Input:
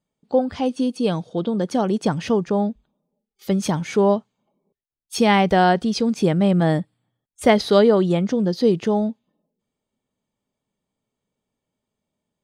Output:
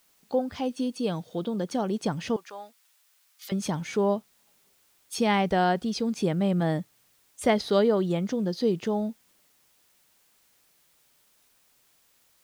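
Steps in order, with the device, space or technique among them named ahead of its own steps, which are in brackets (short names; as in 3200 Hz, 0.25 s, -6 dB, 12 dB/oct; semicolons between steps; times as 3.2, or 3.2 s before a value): noise-reduction cassette on a plain deck (mismatched tape noise reduction encoder only; wow and flutter 13 cents; white noise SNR 36 dB); 2.36–3.52 HPF 1100 Hz 12 dB/oct; gain -7.5 dB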